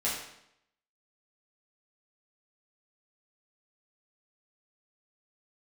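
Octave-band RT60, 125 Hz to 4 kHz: 0.75, 0.80, 0.75, 0.75, 0.70, 0.70 s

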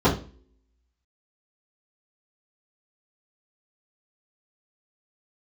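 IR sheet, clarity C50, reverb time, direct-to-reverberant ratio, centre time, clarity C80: 9.0 dB, 0.40 s, -11.5 dB, 21 ms, 14.5 dB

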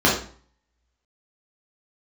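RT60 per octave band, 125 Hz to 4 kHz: 0.60, 0.50, 0.45, 0.45, 0.40, 0.40 s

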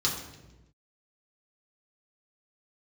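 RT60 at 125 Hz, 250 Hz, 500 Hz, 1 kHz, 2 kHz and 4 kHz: 1.4, 1.3, 1.2, 0.90, 0.90, 0.85 s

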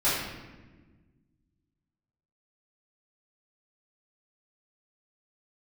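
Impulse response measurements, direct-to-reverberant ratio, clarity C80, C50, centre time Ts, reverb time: -13.0 dB, 3.5 dB, 0.0 dB, 74 ms, 1.3 s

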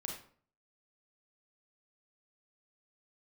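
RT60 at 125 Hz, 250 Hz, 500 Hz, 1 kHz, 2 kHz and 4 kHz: 0.65, 0.55, 0.50, 0.45, 0.40, 0.35 s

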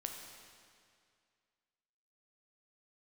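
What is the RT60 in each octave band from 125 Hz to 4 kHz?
2.2, 2.2, 2.2, 2.2, 2.2, 2.0 s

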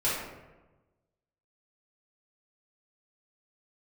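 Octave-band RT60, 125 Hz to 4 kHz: 1.5, 1.3, 1.2, 1.1, 0.90, 0.60 s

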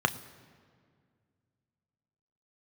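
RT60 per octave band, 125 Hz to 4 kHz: 2.8, 2.6, 2.2, 1.9, 1.7, 1.4 s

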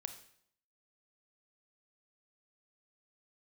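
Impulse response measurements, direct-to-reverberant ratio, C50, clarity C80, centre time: 8.0 dB, 10.5 dB, 13.0 dB, 11 ms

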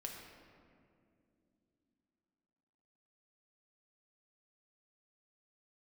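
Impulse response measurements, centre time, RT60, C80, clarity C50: 71 ms, not exponential, 4.0 dB, 2.5 dB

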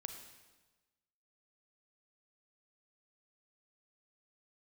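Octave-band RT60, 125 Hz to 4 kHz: 1.3, 1.2, 1.3, 1.2, 1.1, 1.1 s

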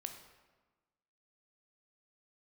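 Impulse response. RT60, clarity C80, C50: 1.3 s, 9.5 dB, 7.5 dB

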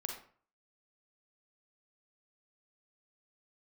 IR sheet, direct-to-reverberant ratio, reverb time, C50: 1.5 dB, 0.45 s, 4.0 dB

